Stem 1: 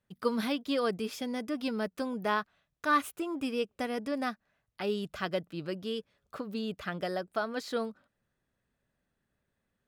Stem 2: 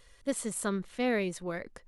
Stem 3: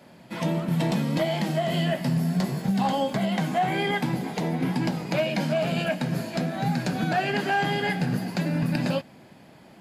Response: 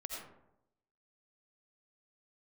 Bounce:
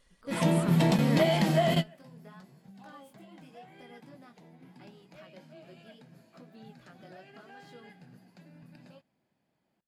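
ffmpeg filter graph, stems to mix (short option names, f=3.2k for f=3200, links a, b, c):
-filter_complex "[0:a]alimiter=limit=-22.5dB:level=0:latency=1:release=184,acompressor=threshold=-33dB:ratio=2.5,flanger=delay=16.5:depth=5.5:speed=0.78,volume=-15dB[a];[1:a]volume=-8dB,asplit=2[b][c];[2:a]volume=1dB[d];[c]apad=whole_len=432421[e];[d][e]sidechaingate=range=-29dB:threshold=-57dB:ratio=16:detection=peak[f];[a][b][f]amix=inputs=3:normalize=0"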